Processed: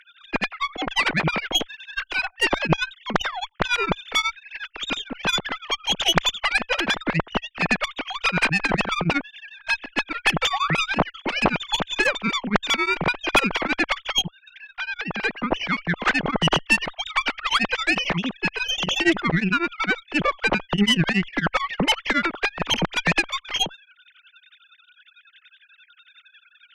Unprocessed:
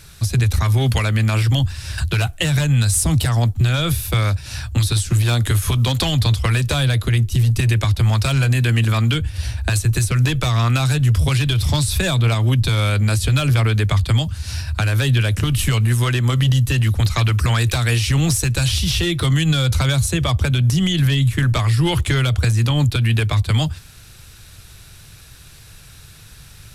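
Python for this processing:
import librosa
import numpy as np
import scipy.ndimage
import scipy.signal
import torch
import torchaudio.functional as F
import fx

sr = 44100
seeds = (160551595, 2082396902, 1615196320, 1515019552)

y = fx.sine_speech(x, sr)
y = fx.highpass(y, sr, hz=390.0, slope=6)
y = fx.high_shelf(y, sr, hz=3000.0, db=8.5)
y = fx.level_steps(y, sr, step_db=12, at=(14.22, 15.23))
y = fx.cheby_harmonics(y, sr, harmonics=(6,), levels_db=(-18,), full_scale_db=-2.0)
y = fx.spec_paint(y, sr, seeds[0], shape='rise', start_s=10.53, length_s=0.28, low_hz=700.0, high_hz=3000.0, level_db=-22.0)
y = y * np.abs(np.cos(np.pi * 11.0 * np.arange(len(y)) / sr))
y = F.gain(torch.from_numpy(y), -2.5).numpy()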